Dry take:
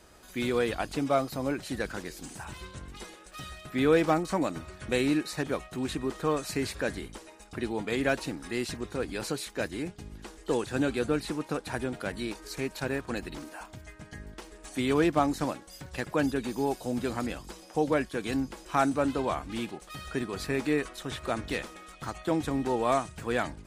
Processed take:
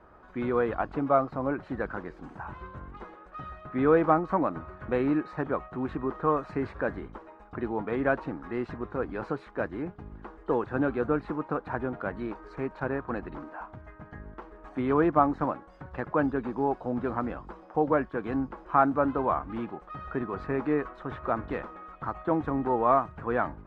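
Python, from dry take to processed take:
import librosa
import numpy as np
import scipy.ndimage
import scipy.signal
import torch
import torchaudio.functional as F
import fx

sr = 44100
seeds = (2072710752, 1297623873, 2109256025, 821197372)

y = fx.lowpass_res(x, sr, hz=1200.0, q=2.0)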